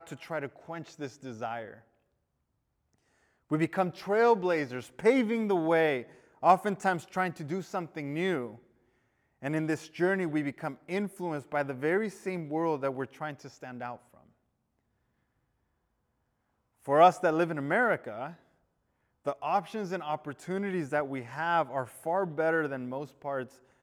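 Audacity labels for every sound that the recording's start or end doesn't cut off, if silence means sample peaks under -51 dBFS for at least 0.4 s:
3.500000	8.590000	sound
9.420000	14.290000	sound
16.840000	18.360000	sound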